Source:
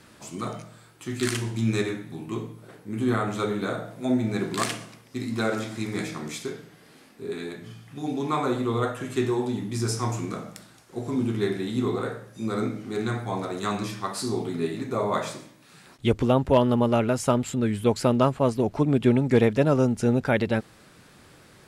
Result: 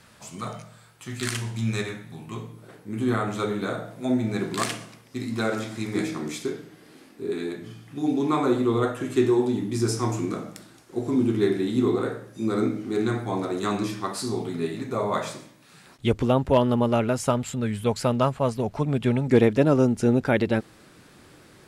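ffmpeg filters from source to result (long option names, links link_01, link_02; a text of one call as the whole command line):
ffmpeg -i in.wav -af "asetnsamples=nb_out_samples=441:pad=0,asendcmd='2.53 equalizer g 0;5.95 equalizer g 7.5;14.16 equalizer g -1;17.3 equalizer g -7.5;19.28 equalizer g 4.5',equalizer=frequency=320:width_type=o:width=0.66:gain=-10" out.wav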